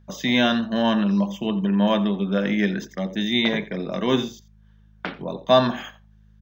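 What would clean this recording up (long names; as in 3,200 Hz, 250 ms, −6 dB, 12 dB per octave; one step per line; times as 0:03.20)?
hum removal 52.5 Hz, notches 4
echo removal 86 ms −18.5 dB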